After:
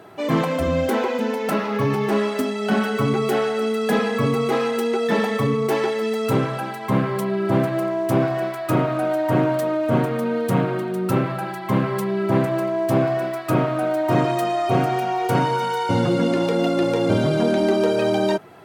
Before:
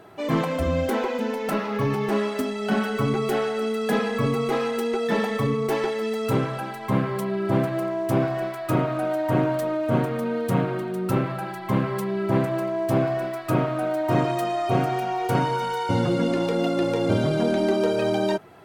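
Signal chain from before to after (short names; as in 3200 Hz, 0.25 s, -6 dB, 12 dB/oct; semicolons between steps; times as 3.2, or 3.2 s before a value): HPF 91 Hz; in parallel at -11.5 dB: hard clip -20 dBFS, distortion -13 dB; on the sum: gain +1.5 dB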